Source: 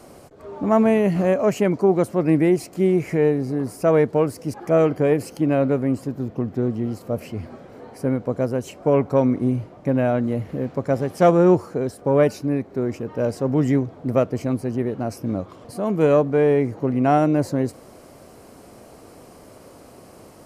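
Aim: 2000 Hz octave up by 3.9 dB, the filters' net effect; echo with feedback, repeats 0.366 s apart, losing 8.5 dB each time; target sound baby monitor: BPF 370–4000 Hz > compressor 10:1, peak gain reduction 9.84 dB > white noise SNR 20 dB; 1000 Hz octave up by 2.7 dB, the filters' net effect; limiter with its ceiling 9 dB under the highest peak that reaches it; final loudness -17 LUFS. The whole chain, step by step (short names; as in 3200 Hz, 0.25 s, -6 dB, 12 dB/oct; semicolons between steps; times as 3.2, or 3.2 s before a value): bell 1000 Hz +3.5 dB; bell 2000 Hz +4 dB; limiter -13 dBFS; BPF 370–4000 Hz; feedback echo 0.366 s, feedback 38%, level -8.5 dB; compressor 10:1, threshold -26 dBFS; white noise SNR 20 dB; gain +15 dB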